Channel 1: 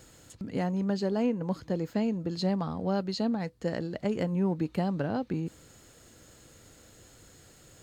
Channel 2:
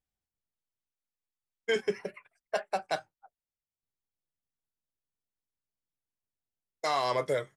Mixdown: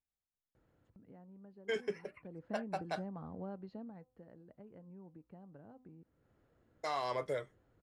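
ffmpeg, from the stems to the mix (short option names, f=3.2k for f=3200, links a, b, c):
-filter_complex "[0:a]lowpass=1.4k,acompressor=threshold=-48dB:ratio=2,bandreject=f=254.4:t=h:w=4,bandreject=f=508.8:t=h:w=4,bandreject=f=763.2:t=h:w=4,bandreject=f=1.0176k:t=h:w=4,bandreject=f=1.272k:t=h:w=4,adelay=550,volume=-3dB,afade=t=in:st=2.16:d=0.32:silence=0.237137,afade=t=out:st=3.5:d=0.66:silence=0.281838[a];[1:a]highshelf=f=3.9k:g=-5.5,volume=-7.5dB[b];[a][b]amix=inputs=2:normalize=0"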